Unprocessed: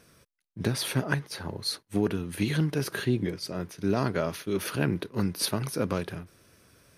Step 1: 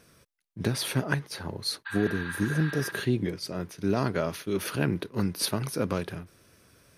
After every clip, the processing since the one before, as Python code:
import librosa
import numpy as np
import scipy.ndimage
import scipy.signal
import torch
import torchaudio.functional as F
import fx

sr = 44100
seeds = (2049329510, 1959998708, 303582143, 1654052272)

y = fx.spec_repair(x, sr, seeds[0], start_s=1.89, length_s=0.99, low_hz=810.0, high_hz=4700.0, source='after')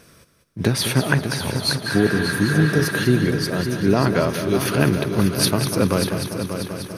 y = fx.echo_heads(x, sr, ms=196, heads='first and third', feedback_pct=64, wet_db=-9.5)
y = F.gain(torch.from_numpy(y), 8.5).numpy()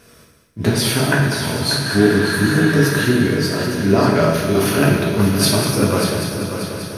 y = fx.rev_gated(x, sr, seeds[1], gate_ms=280, shape='falling', drr_db=-3.5)
y = F.gain(torch.from_numpy(y), -1.0).numpy()